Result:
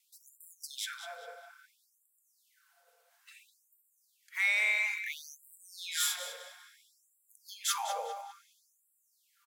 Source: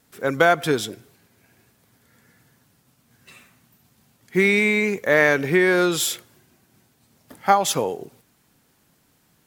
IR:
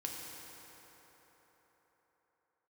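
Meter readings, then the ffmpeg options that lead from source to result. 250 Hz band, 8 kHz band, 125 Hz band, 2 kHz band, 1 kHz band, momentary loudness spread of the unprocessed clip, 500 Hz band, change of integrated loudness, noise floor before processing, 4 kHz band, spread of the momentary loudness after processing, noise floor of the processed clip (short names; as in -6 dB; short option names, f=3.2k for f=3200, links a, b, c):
under -40 dB, -7.0 dB, under -40 dB, -11.5 dB, -17.0 dB, 12 LU, -27.5 dB, -13.0 dB, -63 dBFS, -7.5 dB, 23 LU, -75 dBFS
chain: -filter_complex "[0:a]asplit=2[a][b];[b]adelay=200,lowpass=f=4.4k:p=1,volume=-8dB,asplit=2[c][d];[d]adelay=200,lowpass=f=4.4k:p=1,volume=0.42,asplit=2[e][f];[f]adelay=200,lowpass=f=4.4k:p=1,volume=0.42,asplit=2[g][h];[h]adelay=200,lowpass=f=4.4k:p=1,volume=0.42,asplit=2[i][j];[j]adelay=200,lowpass=f=4.4k:p=1,volume=0.42[k];[a][c][e][g][i][k]amix=inputs=6:normalize=0,asplit=2[l][m];[1:a]atrim=start_sample=2205,adelay=47[n];[m][n]afir=irnorm=-1:irlink=0,volume=-16.5dB[o];[l][o]amix=inputs=2:normalize=0,afftfilt=real='re*gte(b*sr/1024,440*pow(7400/440,0.5+0.5*sin(2*PI*0.59*pts/sr)))':imag='im*gte(b*sr/1024,440*pow(7400/440,0.5+0.5*sin(2*PI*0.59*pts/sr)))':win_size=1024:overlap=0.75,volume=-7.5dB"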